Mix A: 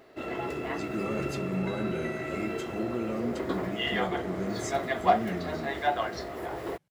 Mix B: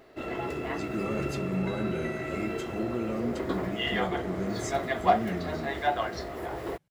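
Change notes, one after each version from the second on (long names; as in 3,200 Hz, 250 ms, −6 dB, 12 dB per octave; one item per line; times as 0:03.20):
master: add low-shelf EQ 65 Hz +9 dB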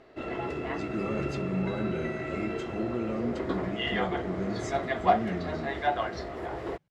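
master: add high-frequency loss of the air 79 metres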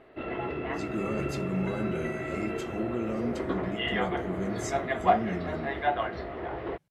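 background: add low-pass filter 3,300 Hz 24 dB per octave
master: remove high-frequency loss of the air 79 metres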